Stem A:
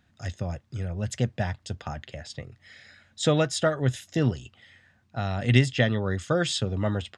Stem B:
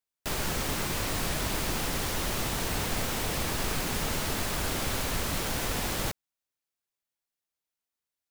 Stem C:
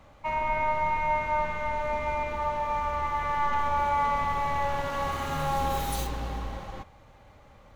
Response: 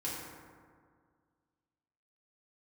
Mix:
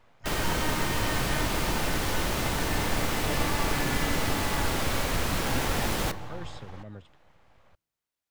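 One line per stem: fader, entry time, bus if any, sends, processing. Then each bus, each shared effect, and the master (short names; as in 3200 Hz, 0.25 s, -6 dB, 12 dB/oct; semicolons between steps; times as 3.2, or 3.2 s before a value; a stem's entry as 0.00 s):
-15.0 dB, 0.00 s, no send, rotary speaker horn 6.3 Hz
+2.5 dB, 0.00 s, send -19 dB, dry
-3.5 dB, 0.00 s, no send, bell 260 Hz -8.5 dB 1.3 oct; full-wave rectifier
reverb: on, RT60 1.9 s, pre-delay 3 ms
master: high shelf 4400 Hz -5.5 dB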